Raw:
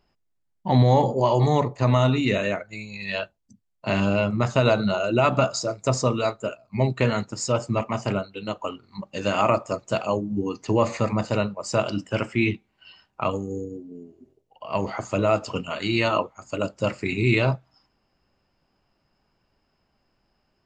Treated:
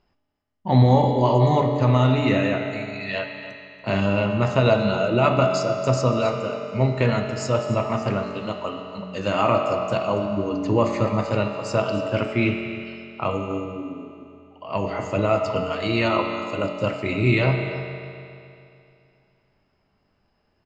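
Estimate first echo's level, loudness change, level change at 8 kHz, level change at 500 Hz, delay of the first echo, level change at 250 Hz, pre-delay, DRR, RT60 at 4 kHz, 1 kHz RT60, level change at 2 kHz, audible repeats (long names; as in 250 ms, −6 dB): −15.5 dB, +2.0 dB, −4.5 dB, +2.0 dB, 282 ms, +2.0 dB, 5 ms, 2.0 dB, 2.6 s, 2.6 s, +1.0 dB, 1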